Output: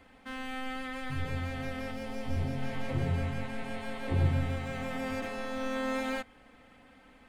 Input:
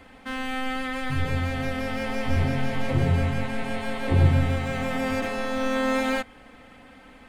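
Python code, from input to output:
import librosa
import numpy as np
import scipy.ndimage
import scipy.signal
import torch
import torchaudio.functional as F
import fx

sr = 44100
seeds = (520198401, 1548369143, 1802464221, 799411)

y = fx.peak_eq(x, sr, hz=1700.0, db=-6.0, octaves=1.7, at=(1.91, 2.62))
y = y * 10.0 ** (-8.5 / 20.0)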